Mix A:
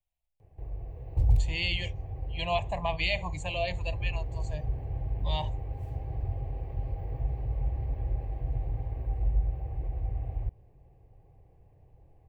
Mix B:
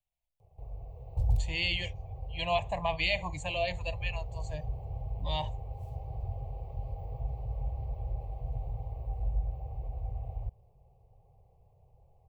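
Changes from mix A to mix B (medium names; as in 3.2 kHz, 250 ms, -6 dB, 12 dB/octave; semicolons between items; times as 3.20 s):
background: add static phaser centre 710 Hz, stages 4; master: add bass shelf 92 Hz -5.5 dB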